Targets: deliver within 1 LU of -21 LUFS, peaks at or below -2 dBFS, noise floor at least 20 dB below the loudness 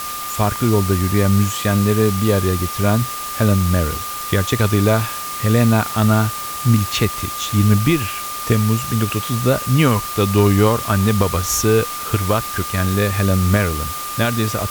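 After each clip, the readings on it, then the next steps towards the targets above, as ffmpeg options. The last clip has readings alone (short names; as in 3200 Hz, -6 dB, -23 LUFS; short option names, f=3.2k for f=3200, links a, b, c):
steady tone 1200 Hz; tone level -27 dBFS; noise floor -27 dBFS; noise floor target -38 dBFS; loudness -17.5 LUFS; peak -3.0 dBFS; loudness target -21.0 LUFS
-> -af "bandreject=f=1.2k:w=30"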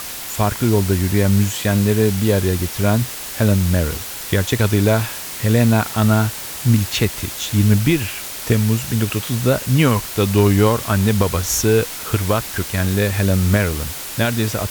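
steady tone none; noise floor -30 dBFS; noise floor target -38 dBFS
-> -af "afftdn=nr=8:nf=-30"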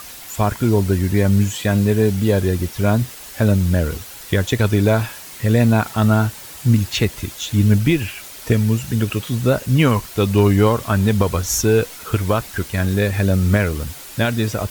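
noise floor -37 dBFS; noise floor target -39 dBFS
-> -af "afftdn=nr=6:nf=-37"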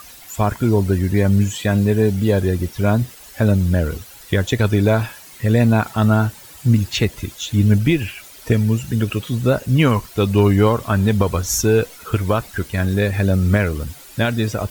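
noise floor -41 dBFS; loudness -18.5 LUFS; peak -3.5 dBFS; loudness target -21.0 LUFS
-> -af "volume=-2.5dB"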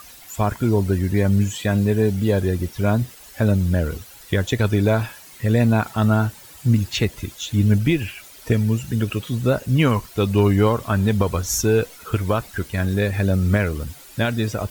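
loudness -21.0 LUFS; peak -6.0 dBFS; noise floor -44 dBFS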